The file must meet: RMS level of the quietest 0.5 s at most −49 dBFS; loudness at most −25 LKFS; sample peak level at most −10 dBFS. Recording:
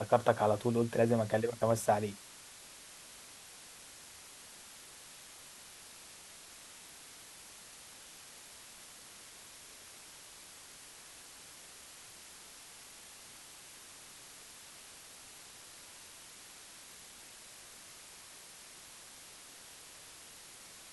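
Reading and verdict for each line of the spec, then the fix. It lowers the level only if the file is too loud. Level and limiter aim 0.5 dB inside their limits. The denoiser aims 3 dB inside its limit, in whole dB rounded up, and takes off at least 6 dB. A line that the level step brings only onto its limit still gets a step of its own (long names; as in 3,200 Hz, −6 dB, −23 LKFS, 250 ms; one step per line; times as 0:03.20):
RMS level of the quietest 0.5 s −53 dBFS: in spec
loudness −40.5 LKFS: in spec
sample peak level −13.5 dBFS: in spec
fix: no processing needed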